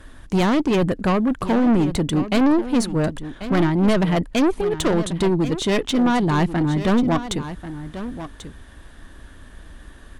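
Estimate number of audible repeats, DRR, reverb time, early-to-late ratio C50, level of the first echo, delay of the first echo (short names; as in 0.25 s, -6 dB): 1, none, none, none, -12.5 dB, 1.089 s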